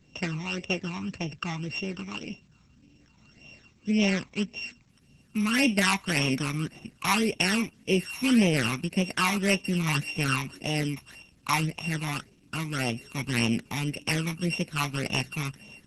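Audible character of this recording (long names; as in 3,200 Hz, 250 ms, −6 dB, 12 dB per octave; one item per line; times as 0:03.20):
a buzz of ramps at a fixed pitch in blocks of 16 samples
phaser sweep stages 12, 1.8 Hz, lowest notch 500–1,500 Hz
a quantiser's noise floor 12 bits, dither none
Opus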